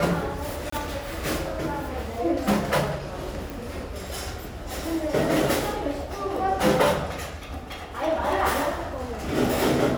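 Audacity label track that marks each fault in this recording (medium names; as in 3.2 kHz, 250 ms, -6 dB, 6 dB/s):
0.700000	0.720000	dropout 24 ms
3.500000	3.500000	pop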